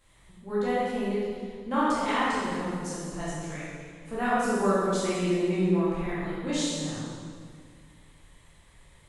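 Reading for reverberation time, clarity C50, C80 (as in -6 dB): 1.9 s, -3.5 dB, -1.0 dB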